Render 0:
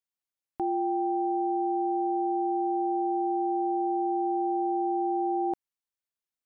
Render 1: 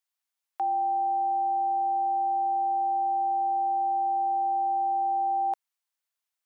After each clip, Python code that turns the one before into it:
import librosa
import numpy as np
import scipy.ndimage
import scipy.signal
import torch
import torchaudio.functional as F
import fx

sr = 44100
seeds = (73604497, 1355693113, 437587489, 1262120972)

y = scipy.signal.sosfilt(scipy.signal.butter(4, 670.0, 'highpass', fs=sr, output='sos'), x)
y = F.gain(torch.from_numpy(y), 5.5).numpy()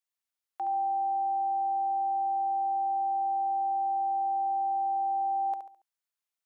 y = fx.echo_feedback(x, sr, ms=70, feedback_pct=36, wet_db=-8.0)
y = F.gain(torch.from_numpy(y), -5.0).numpy()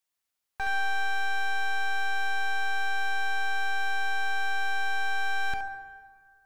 y = np.minimum(x, 2.0 * 10.0 ** (-38.0 / 20.0) - x)
y = fx.rev_plate(y, sr, seeds[0], rt60_s=1.9, hf_ratio=0.5, predelay_ms=0, drr_db=9.0)
y = F.gain(torch.from_numpy(y), 5.5).numpy()